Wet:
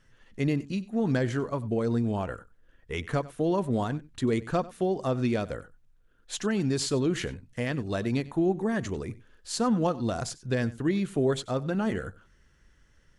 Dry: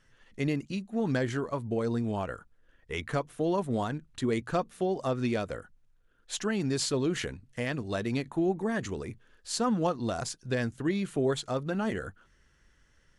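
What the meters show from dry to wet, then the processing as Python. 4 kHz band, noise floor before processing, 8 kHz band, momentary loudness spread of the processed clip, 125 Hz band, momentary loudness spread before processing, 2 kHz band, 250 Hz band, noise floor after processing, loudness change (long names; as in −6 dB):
0.0 dB, −66 dBFS, 0.0 dB, 10 LU, +3.5 dB, 9 LU, +0.5 dB, +3.0 dB, −62 dBFS, +2.5 dB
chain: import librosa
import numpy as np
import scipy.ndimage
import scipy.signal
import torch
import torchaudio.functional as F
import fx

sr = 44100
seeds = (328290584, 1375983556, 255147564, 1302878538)

p1 = fx.low_shelf(x, sr, hz=410.0, db=4.0)
y = p1 + fx.echo_single(p1, sr, ms=94, db=-19.5, dry=0)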